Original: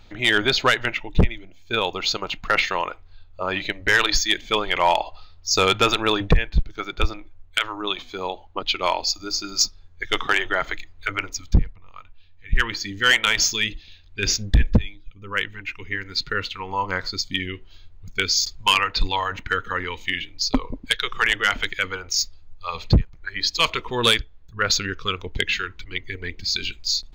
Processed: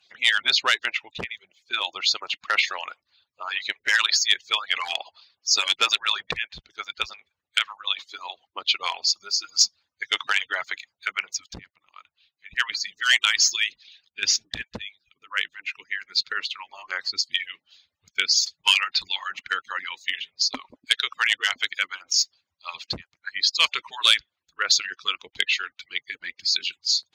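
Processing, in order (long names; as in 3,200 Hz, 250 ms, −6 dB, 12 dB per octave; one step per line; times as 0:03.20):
harmonic-percussive split with one part muted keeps percussive
resonant band-pass 4,200 Hz, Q 0.57
level +2 dB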